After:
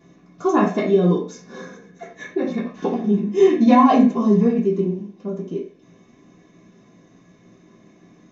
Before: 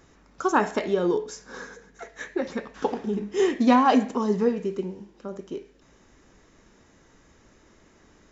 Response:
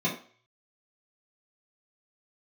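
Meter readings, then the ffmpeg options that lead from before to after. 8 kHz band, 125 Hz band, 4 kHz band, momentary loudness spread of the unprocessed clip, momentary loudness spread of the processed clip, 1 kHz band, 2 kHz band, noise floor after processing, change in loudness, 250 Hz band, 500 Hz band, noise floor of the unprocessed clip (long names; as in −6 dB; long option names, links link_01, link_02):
can't be measured, +13.0 dB, −0.5 dB, 21 LU, 20 LU, +3.5 dB, −0.5 dB, −53 dBFS, +6.0 dB, +8.0 dB, +6.0 dB, −58 dBFS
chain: -filter_complex "[1:a]atrim=start_sample=2205,afade=type=out:start_time=0.16:duration=0.01,atrim=end_sample=7497[link_01];[0:a][link_01]afir=irnorm=-1:irlink=0,volume=-7.5dB"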